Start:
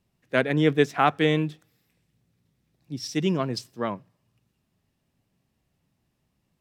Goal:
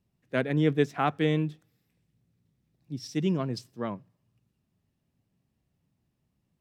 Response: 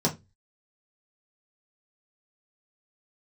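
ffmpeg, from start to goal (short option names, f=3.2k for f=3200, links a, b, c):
-af "equalizer=f=120:w=0.32:g=6.5,volume=-7.5dB"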